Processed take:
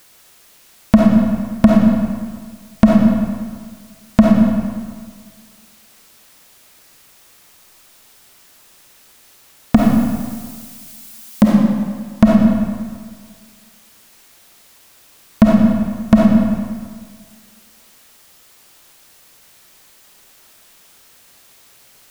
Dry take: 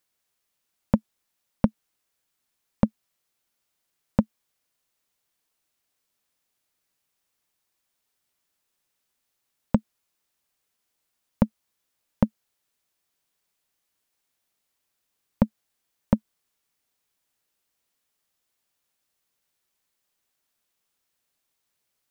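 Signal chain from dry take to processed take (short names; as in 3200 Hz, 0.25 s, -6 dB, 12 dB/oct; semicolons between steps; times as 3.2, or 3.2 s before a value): 9.75–11.44 tilt +3 dB/oct; soft clip -22 dBFS, distortion -4 dB; digital reverb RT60 1.7 s, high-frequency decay 0.75×, pre-delay 10 ms, DRR 4.5 dB; maximiser +30 dB; gain -1 dB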